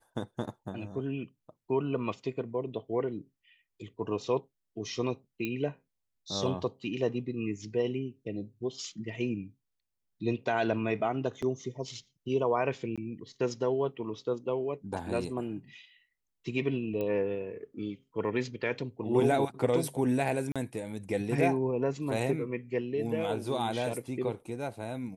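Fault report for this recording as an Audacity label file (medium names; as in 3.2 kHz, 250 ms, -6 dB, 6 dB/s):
5.450000	5.450000	pop -20 dBFS
11.420000	11.430000	dropout 5 ms
12.960000	12.980000	dropout 16 ms
17.010000	17.010000	pop -23 dBFS
20.520000	20.560000	dropout 36 ms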